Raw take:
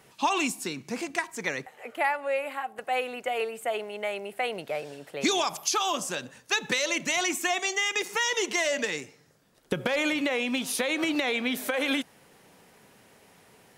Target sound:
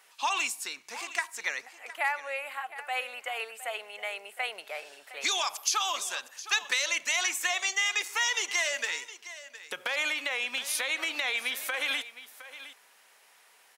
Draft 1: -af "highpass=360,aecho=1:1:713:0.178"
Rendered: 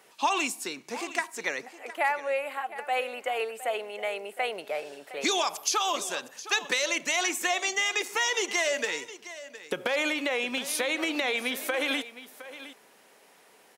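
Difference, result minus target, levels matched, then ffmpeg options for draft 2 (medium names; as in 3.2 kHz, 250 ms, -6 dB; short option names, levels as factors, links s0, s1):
500 Hz band +9.0 dB
-af "highpass=1000,aecho=1:1:713:0.178"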